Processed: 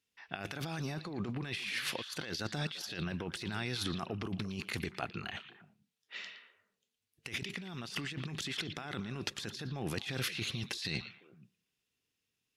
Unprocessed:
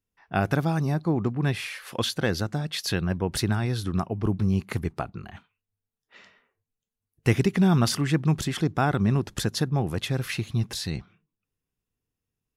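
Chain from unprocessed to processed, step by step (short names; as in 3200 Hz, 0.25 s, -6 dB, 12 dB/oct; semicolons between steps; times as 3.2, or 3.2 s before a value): weighting filter D; negative-ratio compressor -32 dBFS, ratio -1; delay with a stepping band-pass 0.115 s, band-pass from 3200 Hz, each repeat -1.4 oct, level -8.5 dB; gain -7.5 dB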